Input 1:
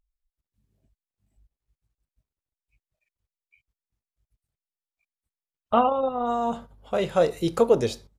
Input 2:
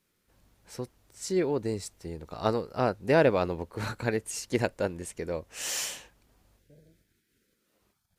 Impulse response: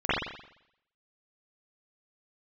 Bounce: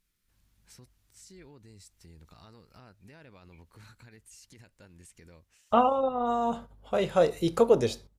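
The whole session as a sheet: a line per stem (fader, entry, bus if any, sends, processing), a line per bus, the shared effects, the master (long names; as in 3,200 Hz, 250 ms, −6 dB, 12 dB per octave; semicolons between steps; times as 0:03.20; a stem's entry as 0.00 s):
−2.0 dB, 0.00 s, no send, no processing
−3.5 dB, 0.00 s, no send, parametric band 520 Hz −13.5 dB 2.1 octaves; downward compressor 4 to 1, threshold −43 dBFS, peak gain reduction 15 dB; brickwall limiter −40 dBFS, peak gain reduction 9.5 dB; automatic ducking −16 dB, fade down 0.40 s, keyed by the first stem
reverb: not used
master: no processing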